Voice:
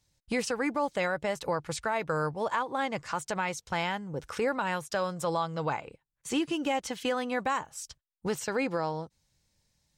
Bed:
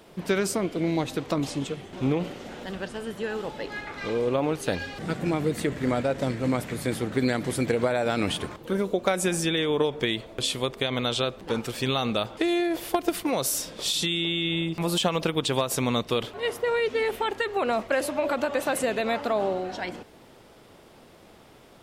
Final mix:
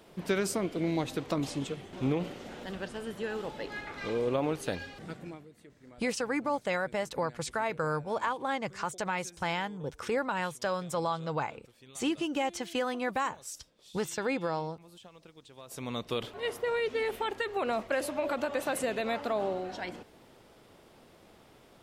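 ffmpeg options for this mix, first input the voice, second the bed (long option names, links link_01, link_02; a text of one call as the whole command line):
ffmpeg -i stem1.wav -i stem2.wav -filter_complex "[0:a]adelay=5700,volume=-1.5dB[link_01];[1:a]volume=18.5dB,afade=type=out:start_time=4.48:duration=0.99:silence=0.0630957,afade=type=in:start_time=15.57:duration=0.71:silence=0.0707946[link_02];[link_01][link_02]amix=inputs=2:normalize=0" out.wav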